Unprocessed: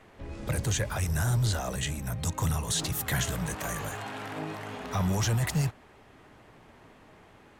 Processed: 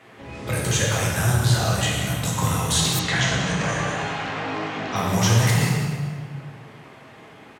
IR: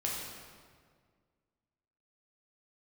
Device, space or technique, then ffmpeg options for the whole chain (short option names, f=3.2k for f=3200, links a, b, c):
PA in a hall: -filter_complex "[0:a]highpass=130,equalizer=f=2.6k:t=o:w=1.9:g=3.5,aecho=1:1:185:0.282[a];[1:a]atrim=start_sample=2205[b];[a][b]afir=irnorm=-1:irlink=0,asettb=1/sr,asplit=3[c][d][e];[c]atrim=end=2.994[f];[d]atrim=start=2.99:end=4.96,asetpts=PTS-STARTPTS,afade=t=in:d=0.004:c=qsin,afade=t=out:st=1.966:d=0.004:c=qsin,lowpass=f=6.6k:w=0.5412,lowpass=f=6.6k:w=1.3066[g];[e]atrim=start=4.956[h];[f][g]acrossfade=d=0.004:c1=hsin:c2=qsin[i];[i][h]acrossfade=d=0.004:c1=qsin:c2=hsin,volume=4dB"